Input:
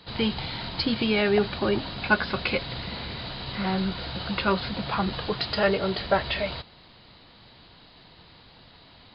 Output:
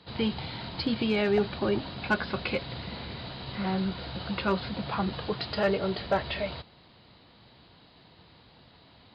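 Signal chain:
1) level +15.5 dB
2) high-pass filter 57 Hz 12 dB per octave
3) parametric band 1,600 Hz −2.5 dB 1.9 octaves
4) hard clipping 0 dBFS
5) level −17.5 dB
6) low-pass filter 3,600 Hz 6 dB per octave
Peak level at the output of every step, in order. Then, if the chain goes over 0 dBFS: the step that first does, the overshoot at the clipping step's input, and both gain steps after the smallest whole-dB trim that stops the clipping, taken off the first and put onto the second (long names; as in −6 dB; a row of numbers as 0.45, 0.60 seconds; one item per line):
+8.0, +7.0, +6.0, 0.0, −17.5, −17.5 dBFS
step 1, 6.0 dB
step 1 +9.5 dB, step 5 −11.5 dB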